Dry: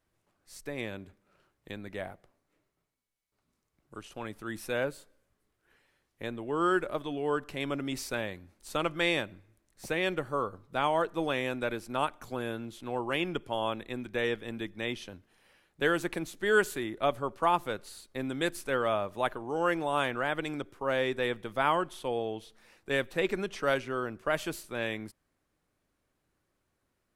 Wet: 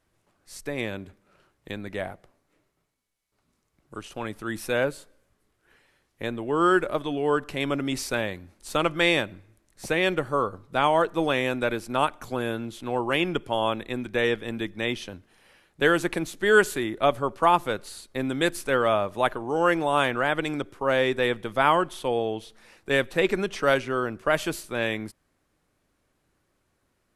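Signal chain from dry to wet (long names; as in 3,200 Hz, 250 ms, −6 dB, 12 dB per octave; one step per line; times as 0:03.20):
linear-phase brick-wall low-pass 13,000 Hz
level +6.5 dB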